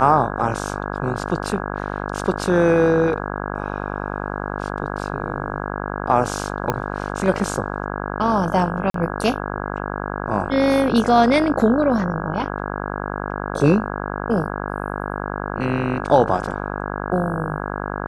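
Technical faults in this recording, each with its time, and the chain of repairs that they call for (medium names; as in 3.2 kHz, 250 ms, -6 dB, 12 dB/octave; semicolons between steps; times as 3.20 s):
buzz 50 Hz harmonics 33 -27 dBFS
6.70 s: pop -7 dBFS
8.90–8.94 s: dropout 43 ms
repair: de-click; de-hum 50 Hz, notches 33; interpolate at 8.90 s, 43 ms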